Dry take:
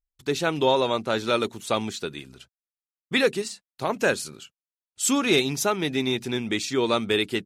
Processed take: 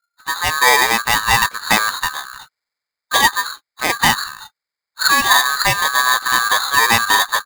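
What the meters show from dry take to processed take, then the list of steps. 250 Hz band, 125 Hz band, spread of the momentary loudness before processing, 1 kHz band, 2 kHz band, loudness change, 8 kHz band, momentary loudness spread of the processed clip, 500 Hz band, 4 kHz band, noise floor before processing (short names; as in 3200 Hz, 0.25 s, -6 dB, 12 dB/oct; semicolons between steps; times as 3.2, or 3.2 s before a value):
-5.0 dB, +2.5 dB, 10 LU, +14.0 dB, +15.0 dB, +10.0 dB, +11.0 dB, 11 LU, -4.5 dB, +11.0 dB, under -85 dBFS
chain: nonlinear frequency compression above 2100 Hz 4:1; low shelf 130 Hz +8.5 dB; AGC gain up to 11.5 dB; LPF 2800 Hz 6 dB/oct; polarity switched at an audio rate 1400 Hz; gain +1 dB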